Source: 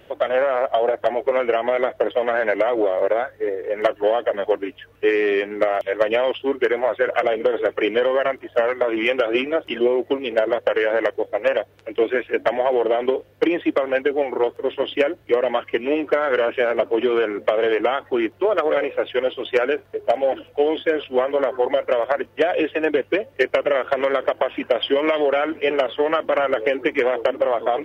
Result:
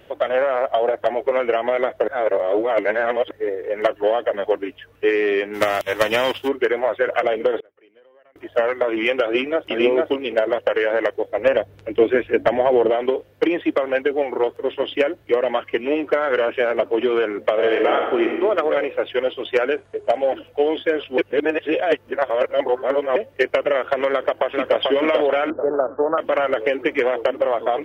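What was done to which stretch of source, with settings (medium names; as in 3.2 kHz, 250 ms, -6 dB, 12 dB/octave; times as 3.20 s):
2.08–3.31 s: reverse
5.53–6.47 s: formants flattened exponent 0.6
7.60–8.36 s: inverted gate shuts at -25 dBFS, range -34 dB
9.25–9.70 s: echo throw 450 ms, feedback 10%, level -1 dB
11.37–12.90 s: bass shelf 280 Hz +12 dB
17.53–18.26 s: reverb throw, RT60 1.3 s, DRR 1.5 dB
19.74–20.32 s: careless resampling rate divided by 2×, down none, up filtered
21.18–23.16 s: reverse
24.09–24.82 s: echo throw 440 ms, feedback 45%, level -2.5 dB
25.50–26.18 s: steep low-pass 1.5 kHz 72 dB/octave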